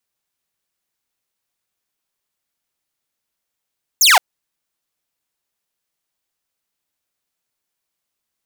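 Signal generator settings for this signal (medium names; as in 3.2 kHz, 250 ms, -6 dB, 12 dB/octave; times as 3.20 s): laser zap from 7.5 kHz, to 660 Hz, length 0.17 s saw, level -5 dB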